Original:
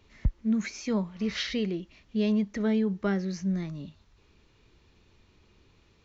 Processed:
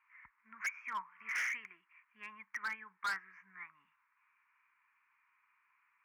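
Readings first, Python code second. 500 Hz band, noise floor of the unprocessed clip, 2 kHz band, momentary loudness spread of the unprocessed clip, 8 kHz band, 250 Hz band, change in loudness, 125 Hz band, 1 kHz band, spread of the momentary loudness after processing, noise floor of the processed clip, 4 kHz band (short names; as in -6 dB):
-35.0 dB, -63 dBFS, +2.5 dB, 9 LU, n/a, under -40 dB, -10.5 dB, under -40 dB, 0.0 dB, 17 LU, -78 dBFS, -15.0 dB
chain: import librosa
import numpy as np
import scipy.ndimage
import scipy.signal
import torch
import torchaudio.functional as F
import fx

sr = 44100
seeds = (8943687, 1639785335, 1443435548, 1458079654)

y = scipy.signal.sosfilt(scipy.signal.ellip(3, 1.0, 40, [1000.0, 2300.0], 'bandpass', fs=sr, output='sos'), x)
y = np.clip(y, -10.0 ** (-39.5 / 20.0), 10.0 ** (-39.5 / 20.0))
y = fx.upward_expand(y, sr, threshold_db=-58.0, expansion=1.5)
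y = F.gain(torch.from_numpy(y), 7.5).numpy()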